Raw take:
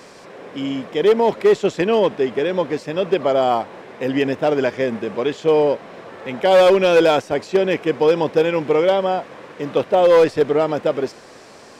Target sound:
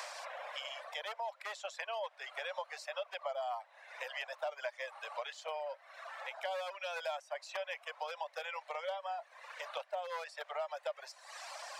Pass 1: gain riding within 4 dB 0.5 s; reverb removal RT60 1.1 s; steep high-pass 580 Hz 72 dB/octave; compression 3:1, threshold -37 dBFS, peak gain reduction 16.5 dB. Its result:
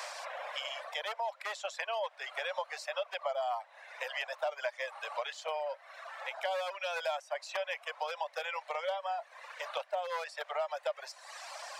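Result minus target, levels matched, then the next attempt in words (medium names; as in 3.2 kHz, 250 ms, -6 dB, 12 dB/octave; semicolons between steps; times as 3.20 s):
compression: peak gain reduction -4.5 dB
gain riding within 4 dB 0.5 s; reverb removal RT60 1.1 s; steep high-pass 580 Hz 72 dB/octave; compression 3:1, threshold -43.5 dBFS, peak gain reduction 21 dB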